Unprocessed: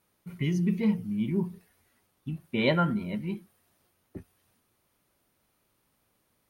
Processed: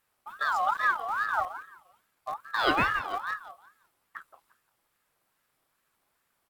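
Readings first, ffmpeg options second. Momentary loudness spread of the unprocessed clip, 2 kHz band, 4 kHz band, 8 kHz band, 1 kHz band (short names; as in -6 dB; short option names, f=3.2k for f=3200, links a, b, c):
22 LU, +10.0 dB, +2.5 dB, n/a, +11.5 dB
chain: -filter_complex "[0:a]highpass=f=51:w=0.5412,highpass=f=51:w=1.3066,asplit=2[a][b];[b]acrusher=bits=6:dc=4:mix=0:aa=0.000001,volume=-11dB[c];[a][c]amix=inputs=2:normalize=0,aecho=1:1:174|348|522:0.224|0.0604|0.0163,aeval=exprs='val(0)*sin(2*PI*1200*n/s+1200*0.25/2.4*sin(2*PI*2.4*n/s))':c=same"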